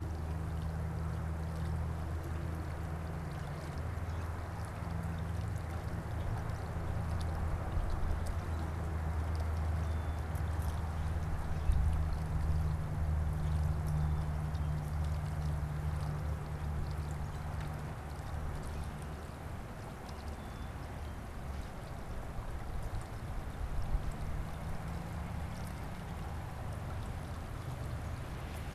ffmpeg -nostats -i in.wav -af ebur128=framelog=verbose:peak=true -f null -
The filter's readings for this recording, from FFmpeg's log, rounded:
Integrated loudness:
  I:         -39.2 LUFS
  Threshold: -49.2 LUFS
Loudness range:
  LRA:         7.8 LU
  Threshold: -59.1 LUFS
  LRA low:   -43.7 LUFS
  LRA high:  -35.9 LUFS
True peak:
  Peak:      -17.9 dBFS